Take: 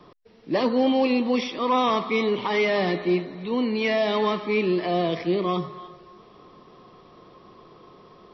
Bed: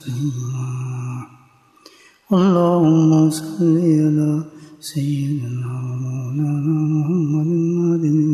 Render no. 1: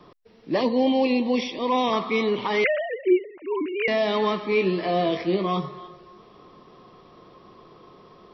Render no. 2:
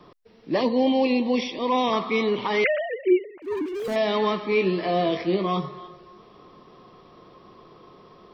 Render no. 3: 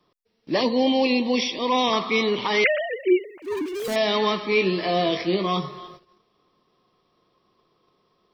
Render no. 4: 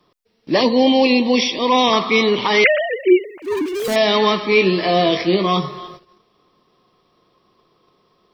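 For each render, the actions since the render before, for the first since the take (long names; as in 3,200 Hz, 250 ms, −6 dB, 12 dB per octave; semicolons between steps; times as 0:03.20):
0:00.61–0:01.93: Butterworth band-reject 1,400 Hz, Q 1.8; 0:02.64–0:03.88: three sine waves on the formant tracks; 0:04.50–0:05.81: double-tracking delay 21 ms −6.5 dB
0:03.42–0:03.96: running median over 41 samples
noise gate −45 dBFS, range −18 dB; high-shelf EQ 3,200 Hz +12 dB
level +6.5 dB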